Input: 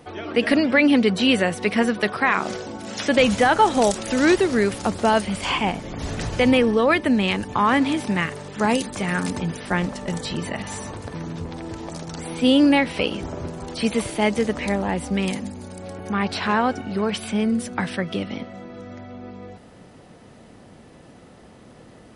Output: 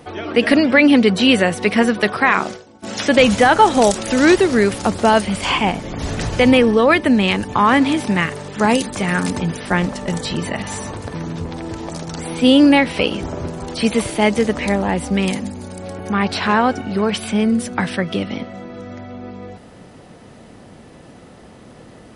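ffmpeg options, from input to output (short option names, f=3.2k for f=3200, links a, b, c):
-filter_complex "[0:a]asplit=3[a][b][c];[a]afade=t=out:st=2.39:d=0.02[d];[b]agate=range=-33dB:threshold=-21dB:ratio=3:detection=peak,afade=t=in:st=2.39:d=0.02,afade=t=out:st=2.82:d=0.02[e];[c]afade=t=in:st=2.82:d=0.02[f];[d][e][f]amix=inputs=3:normalize=0,volume=5dB"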